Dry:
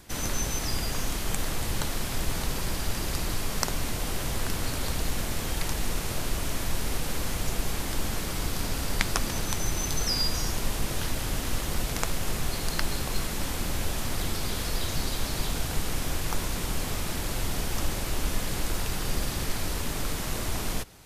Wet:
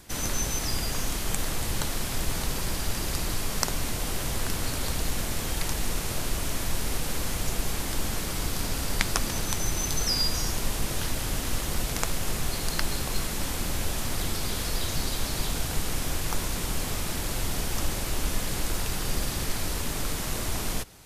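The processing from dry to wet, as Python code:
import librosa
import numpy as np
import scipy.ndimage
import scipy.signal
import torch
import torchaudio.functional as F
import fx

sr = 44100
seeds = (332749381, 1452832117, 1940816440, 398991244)

y = fx.peak_eq(x, sr, hz=9400.0, db=2.5, octaves=1.9)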